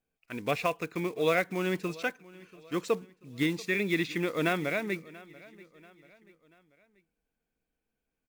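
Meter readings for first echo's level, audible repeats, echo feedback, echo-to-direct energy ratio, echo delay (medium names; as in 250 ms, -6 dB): -21.0 dB, 3, 45%, -20.0 dB, 686 ms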